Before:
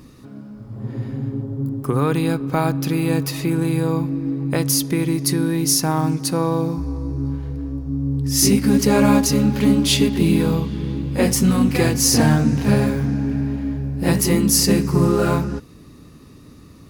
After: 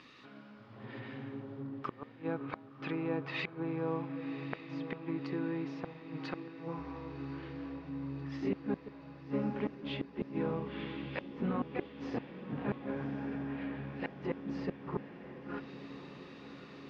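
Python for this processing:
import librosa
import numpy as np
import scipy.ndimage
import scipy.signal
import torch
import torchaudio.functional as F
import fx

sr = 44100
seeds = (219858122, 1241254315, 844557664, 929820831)

y = fx.env_lowpass_down(x, sr, base_hz=760.0, full_db=-16.0)
y = scipy.signal.sosfilt(scipy.signal.butter(4, 3100.0, 'lowpass', fs=sr, output='sos'), y)
y = np.diff(y, prepend=0.0)
y = fx.gate_flip(y, sr, shuts_db=-35.0, range_db=-31)
y = fx.echo_diffused(y, sr, ms=1118, feedback_pct=68, wet_db=-11.5)
y = y * 10.0 ** (12.5 / 20.0)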